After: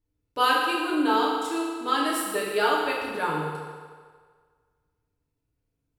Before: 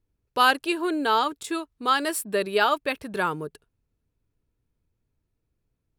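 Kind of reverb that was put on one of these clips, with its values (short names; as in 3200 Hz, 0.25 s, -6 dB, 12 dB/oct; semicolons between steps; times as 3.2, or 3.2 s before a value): FDN reverb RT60 1.7 s, low-frequency decay 0.75×, high-frequency decay 0.85×, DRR -5 dB; gain -7 dB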